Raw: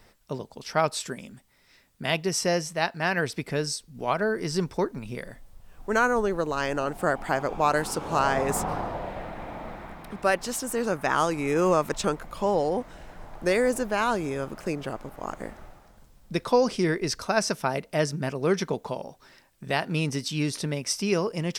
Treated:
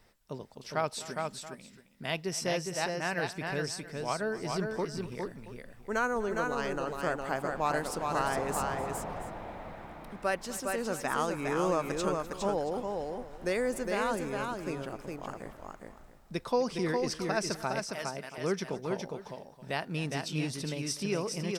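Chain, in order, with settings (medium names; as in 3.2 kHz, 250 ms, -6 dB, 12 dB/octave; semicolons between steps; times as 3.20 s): 17.84–18.38 s: high-pass 1.5 kHz 6 dB/octave; multi-tap echo 249/410/677 ms -18/-4/-17 dB; trim -7.5 dB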